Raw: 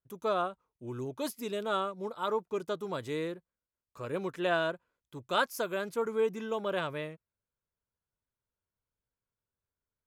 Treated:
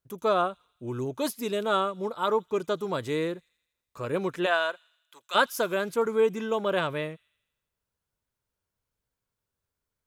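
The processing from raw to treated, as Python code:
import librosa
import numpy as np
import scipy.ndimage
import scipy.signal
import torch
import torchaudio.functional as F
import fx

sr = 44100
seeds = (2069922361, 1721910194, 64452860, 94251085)

y = fx.highpass(x, sr, hz=fx.line((4.45, 600.0), (5.34, 1400.0)), slope=12, at=(4.45, 5.34), fade=0.02)
y = fx.echo_wet_highpass(y, sr, ms=82, feedback_pct=60, hz=3300.0, wet_db=-22.0)
y = y * 10.0 ** (6.0 / 20.0)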